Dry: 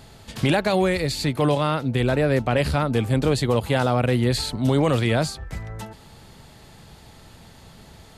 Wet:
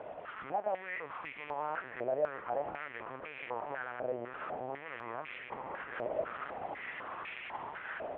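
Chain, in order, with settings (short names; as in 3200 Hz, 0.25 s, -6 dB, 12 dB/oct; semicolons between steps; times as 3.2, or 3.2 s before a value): delta modulation 16 kbps, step -30 dBFS; vocal rider within 5 dB 2 s; diffused feedback echo 1.059 s, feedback 56%, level -6.5 dB; compressor 4:1, threshold -20 dBFS, peak gain reduction 6.5 dB; LPC vocoder at 8 kHz pitch kept; stepped band-pass 4 Hz 630–2300 Hz; gain -1 dB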